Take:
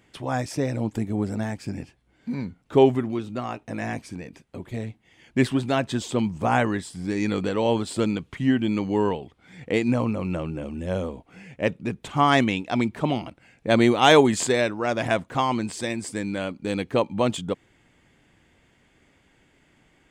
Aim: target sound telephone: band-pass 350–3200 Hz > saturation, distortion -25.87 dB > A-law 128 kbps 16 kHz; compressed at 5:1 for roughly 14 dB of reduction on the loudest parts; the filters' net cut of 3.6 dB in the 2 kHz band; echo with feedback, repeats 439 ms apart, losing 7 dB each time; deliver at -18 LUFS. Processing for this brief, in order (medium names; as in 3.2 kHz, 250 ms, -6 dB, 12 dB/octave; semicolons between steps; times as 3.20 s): peaking EQ 2 kHz -4 dB; compression 5:1, threshold -27 dBFS; band-pass 350–3200 Hz; feedback delay 439 ms, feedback 45%, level -7 dB; saturation -18 dBFS; trim +18 dB; A-law 128 kbps 16 kHz